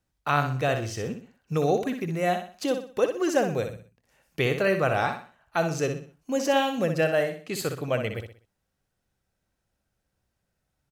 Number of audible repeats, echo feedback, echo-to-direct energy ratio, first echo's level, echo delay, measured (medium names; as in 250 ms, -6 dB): 4, 36%, -7.0 dB, -7.5 dB, 62 ms